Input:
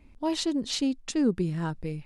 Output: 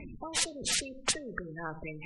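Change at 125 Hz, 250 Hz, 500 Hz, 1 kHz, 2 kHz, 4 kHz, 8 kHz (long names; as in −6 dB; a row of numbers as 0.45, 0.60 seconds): −13.0, −17.0, −9.0, −3.0, +5.5, +0.5, +6.5 decibels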